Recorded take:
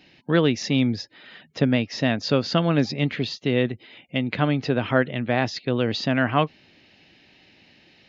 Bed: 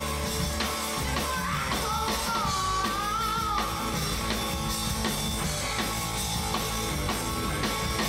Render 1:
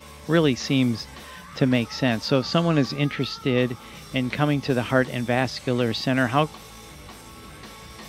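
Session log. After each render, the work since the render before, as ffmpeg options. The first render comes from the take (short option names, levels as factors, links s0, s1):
-filter_complex "[1:a]volume=0.211[s0];[0:a][s0]amix=inputs=2:normalize=0"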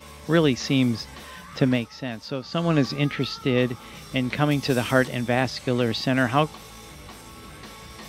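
-filter_complex "[0:a]asettb=1/sr,asplit=3[s0][s1][s2];[s0]atrim=end=4.514[s3];[s1]atrim=start=4.51:end=5.08,asetpts=PTS-STARTPTS,afade=t=in:d=0.004:c=qsin,afade=t=out:st=0.566:d=0.004:c=qsin,highshelf=f=4200:g=10[s4];[s2]atrim=start=5.076[s5];[s3][s4]acrossfade=d=0.004:c1=hsin:c2=qsin[s6];[s6][s5]acrossfade=d=0.004:c1=qsin:c2=hsin,asplit=3[s7][s8][s9];[s7]atrim=end=1.9,asetpts=PTS-STARTPTS,afade=t=out:st=1.69:d=0.21:silence=0.334965[s10];[s8]atrim=start=1.9:end=2.5,asetpts=PTS-STARTPTS,volume=0.335[s11];[s9]atrim=start=2.5,asetpts=PTS-STARTPTS,afade=t=in:d=0.21:silence=0.334965[s12];[s10][s11][s12]concat=n=3:v=0:a=1"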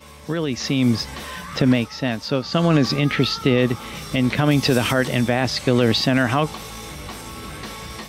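-af "alimiter=limit=0.178:level=0:latency=1:release=60,dynaudnorm=f=500:g=3:m=2.66"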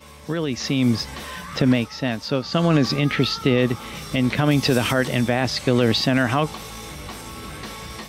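-af "volume=0.891"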